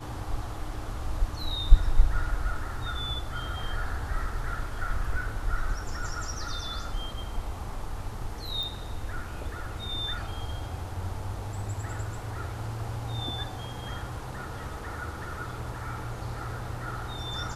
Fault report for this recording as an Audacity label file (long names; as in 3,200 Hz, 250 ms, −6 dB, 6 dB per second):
8.630000	8.630000	click